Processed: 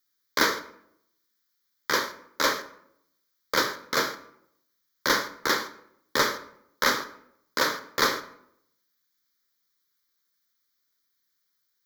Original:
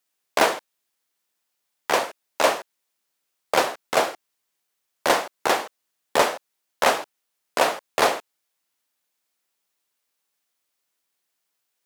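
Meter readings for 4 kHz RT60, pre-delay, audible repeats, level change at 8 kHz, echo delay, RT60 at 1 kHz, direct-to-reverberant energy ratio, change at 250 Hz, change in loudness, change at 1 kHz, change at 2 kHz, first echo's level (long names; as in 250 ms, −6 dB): 0.50 s, 4 ms, no echo audible, −1.5 dB, no echo audible, 0.70 s, 8.5 dB, −1.0 dB, −3.0 dB, −6.0 dB, 0.0 dB, no echo audible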